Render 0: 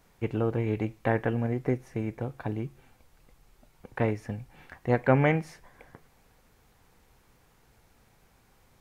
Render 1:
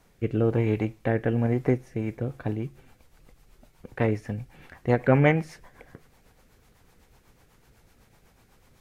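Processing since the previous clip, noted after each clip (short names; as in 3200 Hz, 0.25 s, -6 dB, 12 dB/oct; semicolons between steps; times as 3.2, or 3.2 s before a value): rotary speaker horn 1.1 Hz, later 8 Hz, at 1.75; gain +5 dB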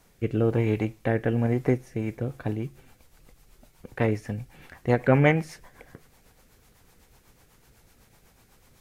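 high shelf 4400 Hz +6 dB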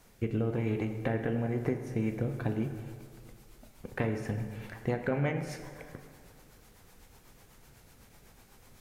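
compressor 10:1, threshold -27 dBFS, peak gain reduction 14 dB; on a send at -6 dB: reverb RT60 2.0 s, pre-delay 3 ms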